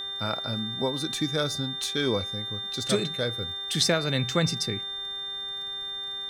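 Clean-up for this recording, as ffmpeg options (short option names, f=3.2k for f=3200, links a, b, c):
-af "adeclick=t=4,bandreject=f=392.8:t=h:w=4,bandreject=f=785.6:t=h:w=4,bandreject=f=1.1784k:t=h:w=4,bandreject=f=1.5712k:t=h:w=4,bandreject=f=1.964k:t=h:w=4,bandreject=f=3.6k:w=30,agate=range=-21dB:threshold=-27dB"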